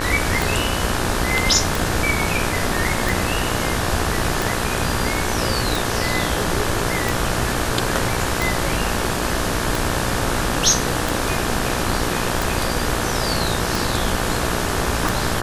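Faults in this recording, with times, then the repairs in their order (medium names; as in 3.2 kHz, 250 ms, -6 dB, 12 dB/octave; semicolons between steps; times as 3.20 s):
buzz 60 Hz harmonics 30 -26 dBFS
tick 45 rpm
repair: de-click; de-hum 60 Hz, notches 30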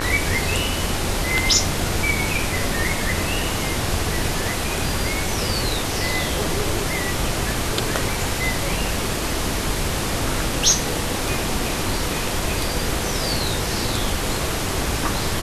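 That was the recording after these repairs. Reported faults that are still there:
nothing left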